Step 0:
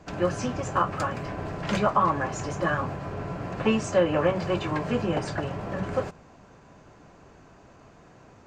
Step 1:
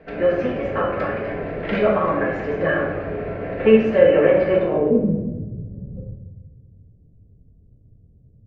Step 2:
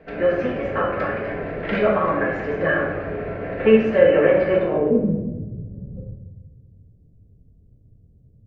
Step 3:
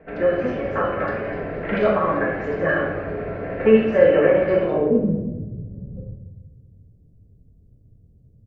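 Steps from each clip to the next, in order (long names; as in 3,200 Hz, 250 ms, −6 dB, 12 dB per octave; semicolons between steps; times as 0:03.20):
octave-band graphic EQ 125/500/1,000/4,000/8,000 Hz −5/+11/−10/+5/−8 dB; low-pass filter sweep 2,000 Hz → 110 Hz, 0:04.51–0:05.18; rectangular room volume 630 cubic metres, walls mixed, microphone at 1.6 metres; level −1 dB
dynamic equaliser 1,600 Hz, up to +3 dB, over −39 dBFS, Q 1.6; level −1 dB
multiband delay without the direct sound lows, highs 80 ms, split 2,900 Hz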